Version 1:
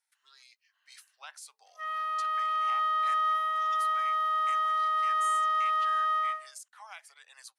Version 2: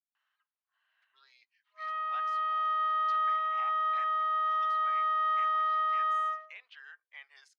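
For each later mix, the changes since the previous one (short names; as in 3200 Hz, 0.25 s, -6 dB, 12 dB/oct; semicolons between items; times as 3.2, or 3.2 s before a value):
speech: entry +0.90 s; master: add air absorption 250 m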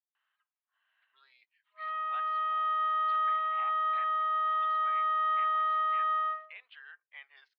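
master: add steep low-pass 3900 Hz 36 dB/oct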